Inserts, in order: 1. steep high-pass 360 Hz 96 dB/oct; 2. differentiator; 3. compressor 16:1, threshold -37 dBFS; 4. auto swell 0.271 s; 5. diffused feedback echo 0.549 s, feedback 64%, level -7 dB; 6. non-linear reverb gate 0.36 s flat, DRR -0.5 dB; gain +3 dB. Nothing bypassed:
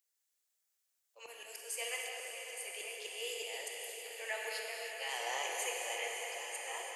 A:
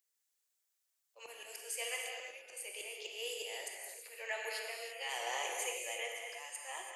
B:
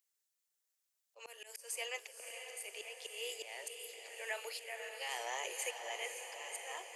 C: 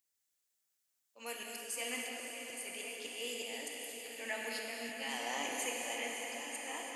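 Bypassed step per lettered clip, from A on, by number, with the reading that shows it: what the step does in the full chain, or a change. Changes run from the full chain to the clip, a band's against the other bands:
5, echo-to-direct 2.5 dB to 0.5 dB; 6, echo-to-direct 2.5 dB to -4.5 dB; 1, 250 Hz band +19.0 dB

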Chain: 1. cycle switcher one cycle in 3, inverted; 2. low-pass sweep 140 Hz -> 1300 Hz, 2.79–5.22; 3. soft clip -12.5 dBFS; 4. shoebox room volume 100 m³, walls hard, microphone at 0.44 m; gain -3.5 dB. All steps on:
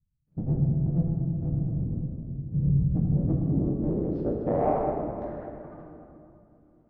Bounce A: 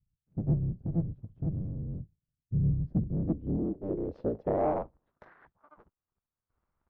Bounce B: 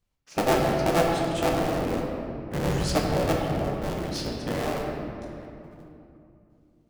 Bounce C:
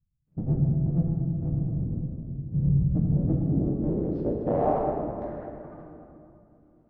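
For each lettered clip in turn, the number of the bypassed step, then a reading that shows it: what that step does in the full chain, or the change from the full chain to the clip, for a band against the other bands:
4, momentary loudness spread change -4 LU; 2, 125 Hz band -11.0 dB; 3, distortion -25 dB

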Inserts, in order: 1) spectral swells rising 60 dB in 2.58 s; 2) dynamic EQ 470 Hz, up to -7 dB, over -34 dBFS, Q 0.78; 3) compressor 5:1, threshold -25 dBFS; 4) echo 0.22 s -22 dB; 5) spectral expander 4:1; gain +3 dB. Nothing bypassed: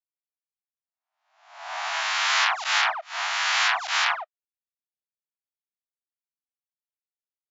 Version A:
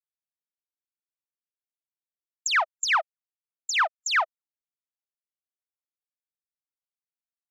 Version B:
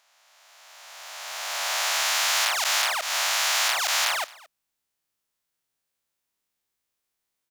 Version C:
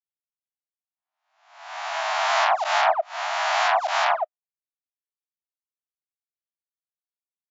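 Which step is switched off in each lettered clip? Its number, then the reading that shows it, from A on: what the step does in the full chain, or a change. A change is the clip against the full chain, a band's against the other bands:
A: 1, 4 kHz band -5.5 dB; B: 5, 8 kHz band +8.5 dB; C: 2, 500 Hz band +17.5 dB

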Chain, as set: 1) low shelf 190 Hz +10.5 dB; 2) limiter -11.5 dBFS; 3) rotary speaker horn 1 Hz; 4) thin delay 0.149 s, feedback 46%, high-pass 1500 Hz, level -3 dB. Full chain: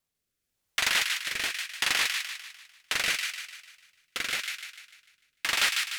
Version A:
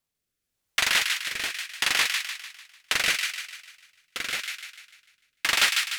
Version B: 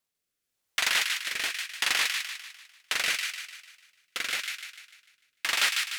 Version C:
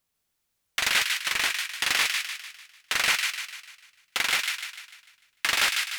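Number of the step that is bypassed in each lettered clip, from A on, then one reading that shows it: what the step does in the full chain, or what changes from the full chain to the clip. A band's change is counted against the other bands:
2, mean gain reduction 1.5 dB; 1, 250 Hz band -3.5 dB; 3, loudness change +2.5 LU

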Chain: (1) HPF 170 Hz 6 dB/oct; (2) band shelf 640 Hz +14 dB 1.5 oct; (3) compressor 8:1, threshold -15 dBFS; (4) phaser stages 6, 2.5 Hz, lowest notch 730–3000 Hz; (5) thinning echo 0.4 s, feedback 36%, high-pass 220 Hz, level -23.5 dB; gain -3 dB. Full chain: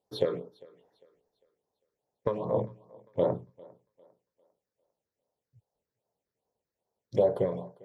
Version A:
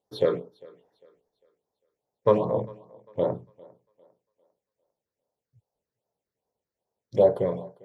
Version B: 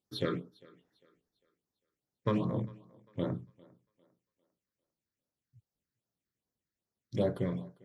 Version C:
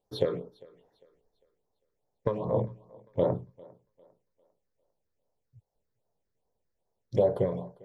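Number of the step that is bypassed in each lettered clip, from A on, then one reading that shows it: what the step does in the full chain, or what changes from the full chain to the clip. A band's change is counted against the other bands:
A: 3, mean gain reduction 3.5 dB; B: 2, 500 Hz band -11.0 dB; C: 1, 125 Hz band +4.0 dB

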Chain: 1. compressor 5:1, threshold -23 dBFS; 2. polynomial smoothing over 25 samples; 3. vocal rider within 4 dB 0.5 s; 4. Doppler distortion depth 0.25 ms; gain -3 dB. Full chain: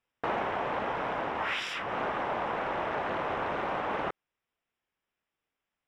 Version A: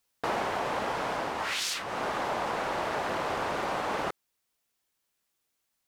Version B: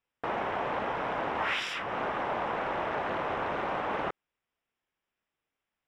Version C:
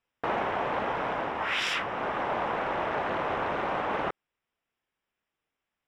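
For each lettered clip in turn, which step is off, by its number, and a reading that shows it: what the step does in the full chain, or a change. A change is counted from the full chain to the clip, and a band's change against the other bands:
2, 4 kHz band +4.5 dB; 3, momentary loudness spread change +1 LU; 1, momentary loudness spread change +1 LU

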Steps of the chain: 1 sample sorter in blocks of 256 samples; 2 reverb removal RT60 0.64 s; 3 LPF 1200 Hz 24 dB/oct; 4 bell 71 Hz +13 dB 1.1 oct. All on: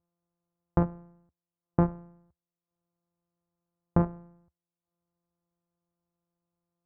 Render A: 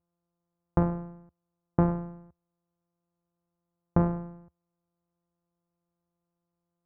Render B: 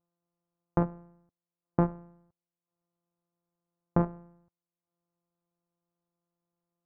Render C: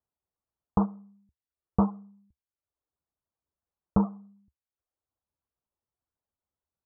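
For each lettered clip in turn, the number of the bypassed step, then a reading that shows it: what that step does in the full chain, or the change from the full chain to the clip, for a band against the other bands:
2, momentary loudness spread change +12 LU; 4, 125 Hz band -2.5 dB; 1, 250 Hz band +5.5 dB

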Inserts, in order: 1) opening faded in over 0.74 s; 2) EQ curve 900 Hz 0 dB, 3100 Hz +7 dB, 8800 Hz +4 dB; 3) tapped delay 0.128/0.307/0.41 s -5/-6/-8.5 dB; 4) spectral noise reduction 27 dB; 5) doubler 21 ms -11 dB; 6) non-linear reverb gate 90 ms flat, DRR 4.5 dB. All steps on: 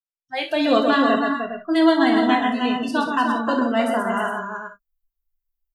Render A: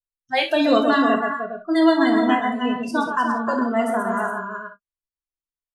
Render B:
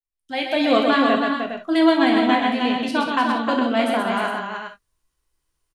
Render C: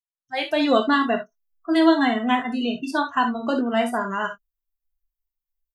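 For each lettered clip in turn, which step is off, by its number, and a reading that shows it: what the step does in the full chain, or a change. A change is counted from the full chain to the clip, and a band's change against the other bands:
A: 1, momentary loudness spread change -2 LU; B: 4, 4 kHz band +2.0 dB; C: 3, momentary loudness spread change -2 LU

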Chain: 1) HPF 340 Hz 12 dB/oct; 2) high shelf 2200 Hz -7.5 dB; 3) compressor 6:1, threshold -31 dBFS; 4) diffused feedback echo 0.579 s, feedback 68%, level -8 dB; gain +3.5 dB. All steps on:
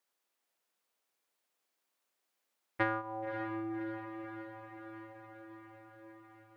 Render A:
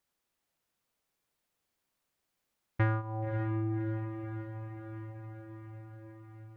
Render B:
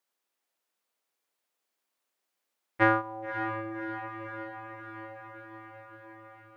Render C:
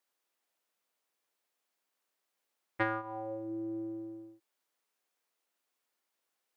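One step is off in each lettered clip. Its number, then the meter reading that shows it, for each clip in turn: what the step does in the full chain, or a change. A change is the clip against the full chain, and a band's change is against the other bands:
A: 1, 125 Hz band +18.5 dB; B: 3, momentary loudness spread change +3 LU; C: 4, echo-to-direct -5.5 dB to none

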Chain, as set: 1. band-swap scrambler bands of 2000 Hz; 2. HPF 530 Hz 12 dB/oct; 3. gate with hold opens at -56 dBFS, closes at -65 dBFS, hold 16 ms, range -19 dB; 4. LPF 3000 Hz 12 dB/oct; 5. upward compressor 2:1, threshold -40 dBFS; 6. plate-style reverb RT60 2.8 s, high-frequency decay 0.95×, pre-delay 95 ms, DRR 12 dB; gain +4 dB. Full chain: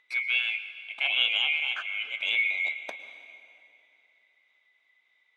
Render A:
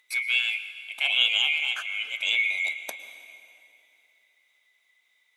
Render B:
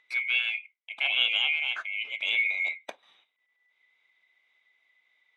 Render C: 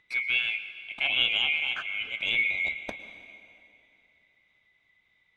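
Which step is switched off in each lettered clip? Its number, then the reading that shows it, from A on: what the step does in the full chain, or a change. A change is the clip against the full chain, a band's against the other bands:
4, 4 kHz band +3.5 dB; 6, momentary loudness spread change -5 LU; 2, 500 Hz band +2.5 dB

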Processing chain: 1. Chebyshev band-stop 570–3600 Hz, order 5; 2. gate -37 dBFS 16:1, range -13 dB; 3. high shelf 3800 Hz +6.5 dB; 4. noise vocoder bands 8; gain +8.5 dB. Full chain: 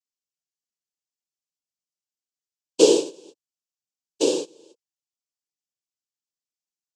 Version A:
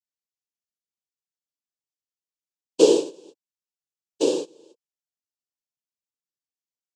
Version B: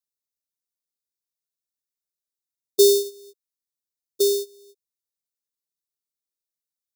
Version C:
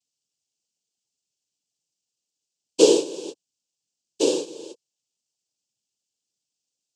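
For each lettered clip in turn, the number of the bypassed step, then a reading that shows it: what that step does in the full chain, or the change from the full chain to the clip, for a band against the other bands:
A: 3, 8 kHz band -4.5 dB; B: 4, crest factor change -4.0 dB; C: 2, momentary loudness spread change -1 LU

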